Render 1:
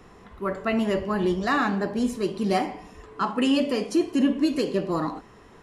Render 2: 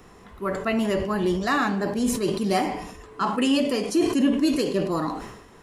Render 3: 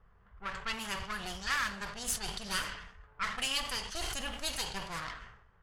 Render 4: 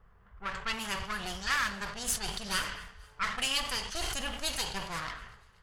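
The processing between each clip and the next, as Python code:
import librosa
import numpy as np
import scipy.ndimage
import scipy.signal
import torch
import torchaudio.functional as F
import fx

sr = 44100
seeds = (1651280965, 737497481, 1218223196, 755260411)

y1 = fx.high_shelf(x, sr, hz=7000.0, db=9.5)
y1 = fx.sustainer(y1, sr, db_per_s=60.0)
y2 = fx.lower_of_two(y1, sr, delay_ms=0.63)
y2 = fx.env_lowpass(y2, sr, base_hz=780.0, full_db=-20.5)
y2 = fx.tone_stack(y2, sr, knobs='10-0-10')
y3 = fx.echo_wet_highpass(y2, sr, ms=241, feedback_pct=50, hz=1400.0, wet_db=-23.0)
y3 = y3 * 10.0 ** (2.5 / 20.0)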